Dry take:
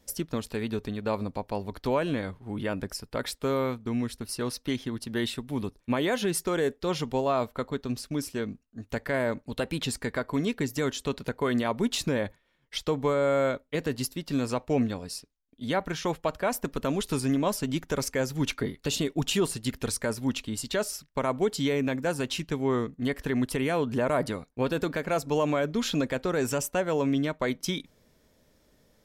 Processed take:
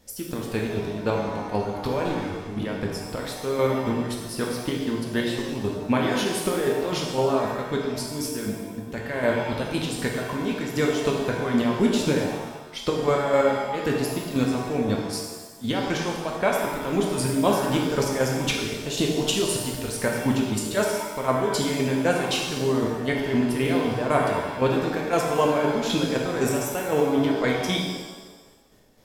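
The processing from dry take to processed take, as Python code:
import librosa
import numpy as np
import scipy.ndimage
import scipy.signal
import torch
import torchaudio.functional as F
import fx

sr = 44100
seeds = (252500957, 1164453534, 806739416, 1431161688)

y = fx.overload_stage(x, sr, gain_db=29.0, at=(2.03, 2.65))
y = fx.chopper(y, sr, hz=3.9, depth_pct=60, duty_pct=30)
y = fx.rev_shimmer(y, sr, seeds[0], rt60_s=1.2, semitones=7, shimmer_db=-8, drr_db=-1.0)
y = y * 10.0 ** (4.5 / 20.0)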